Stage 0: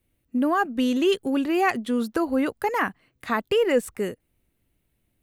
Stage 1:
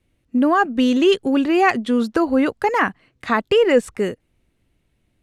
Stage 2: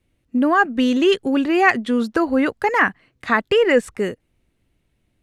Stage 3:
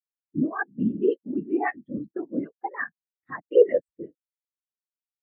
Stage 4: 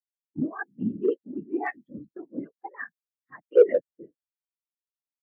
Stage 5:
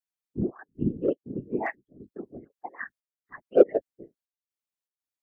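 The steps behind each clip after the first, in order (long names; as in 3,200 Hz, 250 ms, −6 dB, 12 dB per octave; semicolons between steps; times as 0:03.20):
low-pass filter 7,200 Hz 12 dB per octave; level +6 dB
dynamic equaliser 1,800 Hz, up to +6 dB, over −34 dBFS, Q 2; level −1 dB
random phases in short frames; every bin expanded away from the loudest bin 2.5 to 1; level −3 dB
in parallel at −11 dB: hard clipping −15.5 dBFS, distortion −10 dB; on the sum: multiband upward and downward expander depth 70%; level −7 dB
gate pattern "xxxx..xxx." 120 BPM −12 dB; random phases in short frames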